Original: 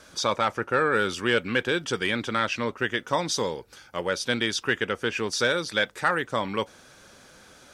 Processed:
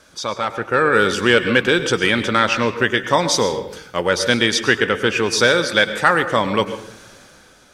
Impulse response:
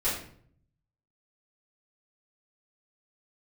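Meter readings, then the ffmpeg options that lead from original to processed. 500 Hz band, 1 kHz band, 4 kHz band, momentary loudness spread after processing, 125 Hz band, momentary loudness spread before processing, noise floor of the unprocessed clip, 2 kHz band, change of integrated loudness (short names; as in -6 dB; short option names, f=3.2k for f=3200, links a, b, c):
+9.0 dB, +8.0 dB, +9.0 dB, 8 LU, +9.0 dB, 6 LU, -53 dBFS, +9.0 dB, +9.0 dB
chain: -filter_complex "[0:a]dynaudnorm=f=130:g=11:m=12dB,asplit=2[a][b];[1:a]atrim=start_sample=2205,adelay=98[c];[b][c]afir=irnorm=-1:irlink=0,volume=-19.5dB[d];[a][d]amix=inputs=2:normalize=0"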